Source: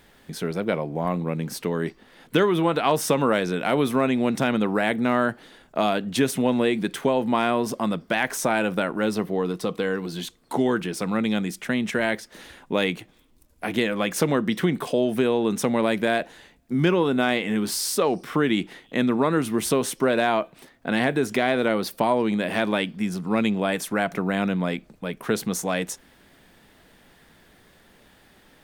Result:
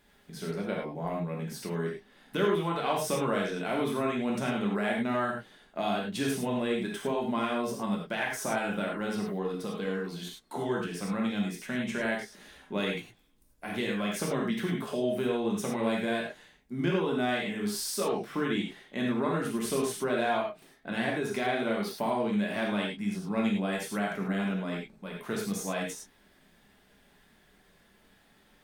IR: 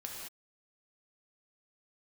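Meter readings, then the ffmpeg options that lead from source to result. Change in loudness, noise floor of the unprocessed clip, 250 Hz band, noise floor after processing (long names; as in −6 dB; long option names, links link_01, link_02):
−7.5 dB, −57 dBFS, −7.0 dB, −63 dBFS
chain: -filter_complex "[0:a]flanger=delay=4.9:depth=1.1:regen=-66:speed=0.41:shape=sinusoidal[link_01];[1:a]atrim=start_sample=2205,asetrate=88200,aresample=44100[link_02];[link_01][link_02]afir=irnorm=-1:irlink=0,volume=4dB"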